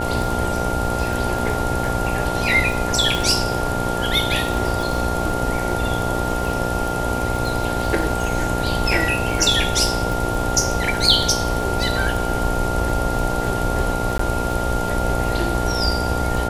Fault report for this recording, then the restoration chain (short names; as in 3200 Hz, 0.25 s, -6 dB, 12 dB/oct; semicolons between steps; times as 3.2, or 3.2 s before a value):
buzz 60 Hz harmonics 15 -25 dBFS
crackle 31/s -25 dBFS
tone 1400 Hz -26 dBFS
3.15 pop
14.18–14.19 gap 14 ms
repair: de-click; notch 1400 Hz, Q 30; de-hum 60 Hz, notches 15; interpolate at 14.18, 14 ms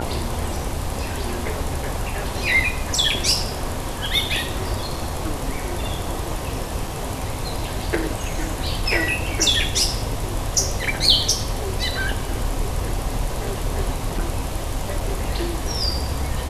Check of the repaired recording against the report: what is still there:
none